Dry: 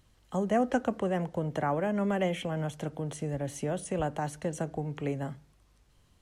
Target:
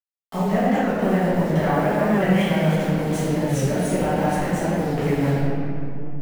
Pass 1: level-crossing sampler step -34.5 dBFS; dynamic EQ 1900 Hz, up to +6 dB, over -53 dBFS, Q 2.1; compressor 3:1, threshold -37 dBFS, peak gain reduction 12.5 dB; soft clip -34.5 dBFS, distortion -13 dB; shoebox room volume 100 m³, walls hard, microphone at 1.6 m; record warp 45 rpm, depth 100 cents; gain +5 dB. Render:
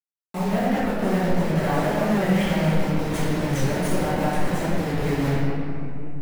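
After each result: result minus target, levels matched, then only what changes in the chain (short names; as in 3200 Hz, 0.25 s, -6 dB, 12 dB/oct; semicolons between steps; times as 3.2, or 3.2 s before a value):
soft clip: distortion +11 dB; level-crossing sampler: distortion +7 dB
change: soft clip -26.5 dBFS, distortion -23 dB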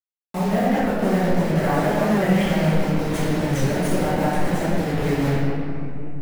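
level-crossing sampler: distortion +7 dB
change: level-crossing sampler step -42 dBFS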